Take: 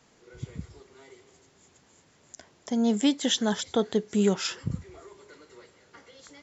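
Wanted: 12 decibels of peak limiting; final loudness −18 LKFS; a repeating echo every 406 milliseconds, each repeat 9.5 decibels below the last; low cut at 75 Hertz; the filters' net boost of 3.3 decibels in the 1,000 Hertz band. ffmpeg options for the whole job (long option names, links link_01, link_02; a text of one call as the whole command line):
ffmpeg -i in.wav -af "highpass=75,equalizer=frequency=1000:width_type=o:gain=4.5,alimiter=limit=-22dB:level=0:latency=1,aecho=1:1:406|812|1218|1624:0.335|0.111|0.0365|0.012,volume=15dB" out.wav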